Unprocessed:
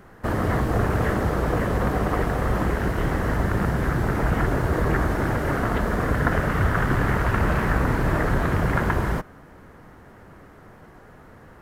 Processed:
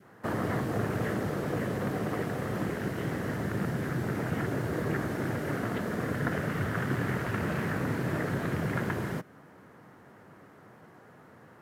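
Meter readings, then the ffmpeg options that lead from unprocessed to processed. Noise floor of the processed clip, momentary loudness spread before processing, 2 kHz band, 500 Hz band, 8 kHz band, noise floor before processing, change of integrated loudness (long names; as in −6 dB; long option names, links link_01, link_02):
−55 dBFS, 2 LU, −8.5 dB, −7.5 dB, −5.5 dB, −48 dBFS, −8.5 dB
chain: -af "highpass=frequency=110:width=0.5412,highpass=frequency=110:width=1.3066,adynamicequalizer=threshold=0.01:dfrequency=990:dqfactor=1.1:tfrequency=990:tqfactor=1.1:attack=5:release=100:ratio=0.375:range=3.5:mode=cutabove:tftype=bell,volume=-5.5dB"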